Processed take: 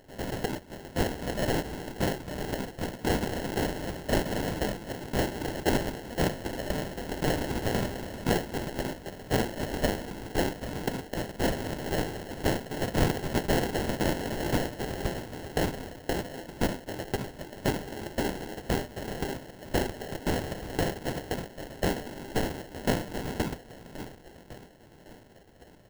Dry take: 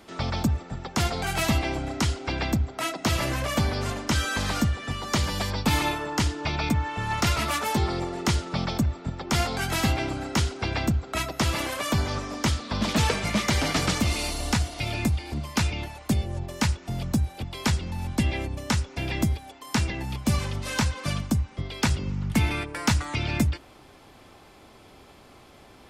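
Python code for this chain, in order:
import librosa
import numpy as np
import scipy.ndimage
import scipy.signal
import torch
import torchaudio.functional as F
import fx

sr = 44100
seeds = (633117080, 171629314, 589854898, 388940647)

y = fx.spec_gate(x, sr, threshold_db=-20, keep='weak')
y = fx.echo_alternate(y, sr, ms=553, hz=2300.0, feedback_pct=58, wet_db=-10.5)
y = fx.sample_hold(y, sr, seeds[0], rate_hz=1200.0, jitter_pct=0)
y = y * librosa.db_to_amplitude(7.0)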